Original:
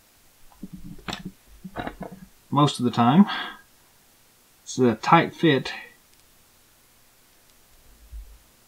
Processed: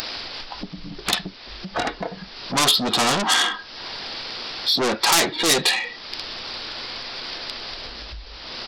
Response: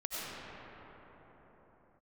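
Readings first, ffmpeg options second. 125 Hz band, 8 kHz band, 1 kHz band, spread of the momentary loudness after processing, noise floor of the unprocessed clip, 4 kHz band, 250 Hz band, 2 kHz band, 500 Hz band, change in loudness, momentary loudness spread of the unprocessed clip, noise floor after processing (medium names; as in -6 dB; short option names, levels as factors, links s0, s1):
-9.5 dB, +17.0 dB, -0.5 dB, 17 LU, -58 dBFS, +14.0 dB, -7.0 dB, +6.5 dB, 0.0 dB, 0.0 dB, 21 LU, -41 dBFS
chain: -af "aresample=11025,asoftclip=type=tanh:threshold=0.112,aresample=44100,acompressor=mode=upward:threshold=0.0251:ratio=2.5,aeval=exprs='0.141*(cos(1*acos(clip(val(0)/0.141,-1,1)))-cos(1*PI/2))+0.0447*(cos(2*acos(clip(val(0)/0.141,-1,1)))-cos(2*PI/2))+0.0398*(cos(5*acos(clip(val(0)/0.141,-1,1)))-cos(5*PI/2))+0.00562*(cos(8*acos(clip(val(0)/0.141,-1,1)))-cos(8*PI/2))':c=same,bass=f=250:g=-11,treble=f=4000:g=14,volume=1.58"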